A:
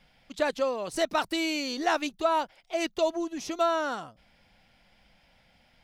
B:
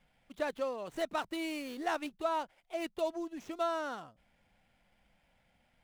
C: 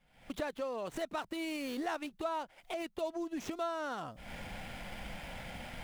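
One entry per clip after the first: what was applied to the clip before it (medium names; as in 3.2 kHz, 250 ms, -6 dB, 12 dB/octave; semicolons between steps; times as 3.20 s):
median filter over 9 samples; trim -7.5 dB
recorder AGC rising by 68 dB/s; trim -3.5 dB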